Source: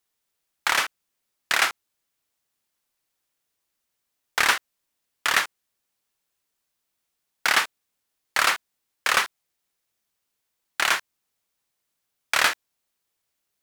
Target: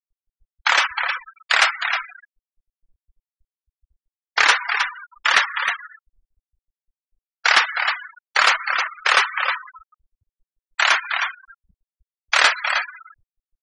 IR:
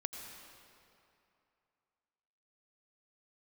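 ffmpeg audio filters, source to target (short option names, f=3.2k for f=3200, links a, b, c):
-filter_complex "[0:a]aeval=exprs='val(0)+0.5*0.0531*sgn(val(0))':c=same,lowshelf=f=85:g=7.5,aecho=1:1:313:0.531,asplit=2[a][b];[1:a]atrim=start_sample=2205,asetrate=40131,aresample=44100[c];[b][c]afir=irnorm=-1:irlink=0,volume=0dB[d];[a][d]amix=inputs=2:normalize=0,afftfilt=real='re*gte(hypot(re,im),0.158)':imag='im*gte(hypot(re,im),0.158)':win_size=1024:overlap=0.75,bass=f=250:g=-12,treble=f=4k:g=3,volume=-1.5dB"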